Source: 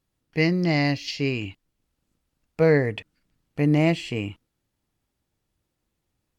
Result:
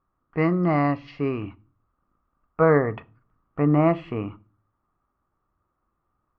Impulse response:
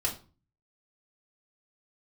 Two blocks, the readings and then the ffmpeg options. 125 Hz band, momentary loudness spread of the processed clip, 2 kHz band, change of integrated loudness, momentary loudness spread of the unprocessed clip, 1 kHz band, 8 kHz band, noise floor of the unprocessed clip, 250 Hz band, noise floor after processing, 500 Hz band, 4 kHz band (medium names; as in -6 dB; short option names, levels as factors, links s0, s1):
-1.0 dB, 19 LU, -4.0 dB, 0.0 dB, 15 LU, +7.5 dB, no reading, -79 dBFS, +0.5 dB, -77 dBFS, +1.0 dB, under -15 dB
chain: -filter_complex "[0:a]lowpass=f=1200:t=q:w=8.9,asplit=2[s0][s1];[1:a]atrim=start_sample=2205[s2];[s1][s2]afir=irnorm=-1:irlink=0,volume=0.133[s3];[s0][s3]amix=inputs=2:normalize=0,volume=0.891"